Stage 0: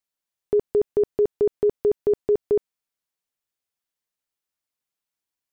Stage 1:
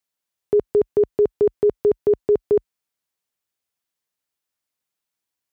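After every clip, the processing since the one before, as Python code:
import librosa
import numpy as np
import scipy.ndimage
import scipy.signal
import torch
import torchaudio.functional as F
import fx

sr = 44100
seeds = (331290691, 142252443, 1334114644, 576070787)

y = scipy.signal.sosfilt(scipy.signal.butter(4, 44.0, 'highpass', fs=sr, output='sos'), x)
y = F.gain(torch.from_numpy(y), 3.0).numpy()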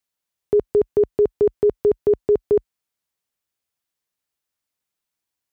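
y = fx.low_shelf(x, sr, hz=87.0, db=6.0)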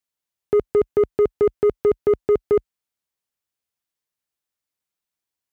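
y = fx.leveller(x, sr, passes=1)
y = F.gain(torch.from_numpy(y), -1.5).numpy()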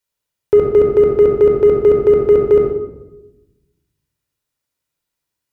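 y = fx.room_shoebox(x, sr, seeds[0], volume_m3=3900.0, walls='furnished', distance_m=4.7)
y = F.gain(torch.from_numpy(y), 3.5).numpy()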